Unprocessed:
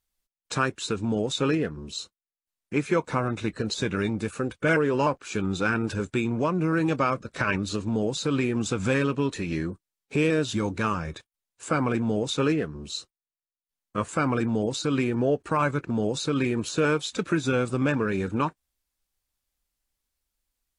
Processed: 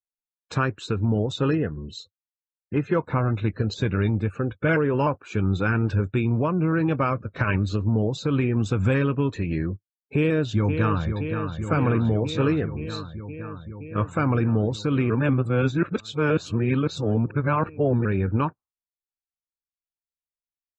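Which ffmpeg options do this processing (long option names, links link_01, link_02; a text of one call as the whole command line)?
ffmpeg -i in.wav -filter_complex "[0:a]asettb=1/sr,asplit=3[link_01][link_02][link_03];[link_01]atrim=end=1.304[link_04];[link_02]atrim=start=1.3:end=3.06,asetpts=PTS-STARTPTS,afade=type=in:duration=0.004:curve=qsin,afade=type=out:start_time=1.756:duration=0.004:curve=qsin,asuperstop=centerf=2300:order=4:qfactor=7.7[link_05];[link_03]atrim=start=3.056[link_06];[link_04][link_05]acrossfade=duration=0.004:curve1=hsin:curve2=qsin[link_07];[link_07][link_06]acrossfade=duration=0.004:curve1=qsin:curve2=hsin,asplit=2[link_08][link_09];[link_09]afade=type=in:start_time=10.16:duration=0.01,afade=type=out:start_time=11.12:duration=0.01,aecho=0:1:520|1040|1560|2080|2600|3120|3640|4160|4680|5200|5720|6240:0.446684|0.357347|0.285877|0.228702|0.182962|0.146369|0.117095|0.0936763|0.0749411|0.0599529|0.0479623|0.0383698[link_10];[link_08][link_10]amix=inputs=2:normalize=0,asettb=1/sr,asplit=3[link_11][link_12][link_13];[link_11]atrim=end=12.964[link_14];[link_12]atrim=start=12.96:end=14.11,asetpts=PTS-STARTPTS,afade=type=in:duration=0.004:curve=qsin,afade=type=out:start_time=1.146:duration=0.004:curve=qsin,acrossover=split=7200[link_15][link_16];[link_16]acompressor=threshold=-57dB:ratio=4:attack=1:release=60[link_17];[link_15][link_17]amix=inputs=2:normalize=0[link_18];[link_13]atrim=start=14.106[link_19];[link_14][link_18]acrossfade=duration=0.004:curve1=hsin:curve2=qsin[link_20];[link_20][link_19]acrossfade=duration=0.004:curve1=qsin:curve2=hsin,asplit=3[link_21][link_22][link_23];[link_21]atrim=end=15.102[link_24];[link_22]atrim=start=15.098:end=18.052,asetpts=PTS-STARTPTS,areverse[link_25];[link_23]atrim=start=18.048[link_26];[link_24][link_25]acrossfade=duration=0.004:curve1=hsin:curve2=hsin[link_27];[link_27][link_26]acrossfade=duration=0.004:curve1=hsin:curve2=hsin,aemphasis=mode=reproduction:type=50fm,afftdn=noise_reduction=30:noise_floor=-48,equalizer=frequency=100:width=1.5:gain=11" out.wav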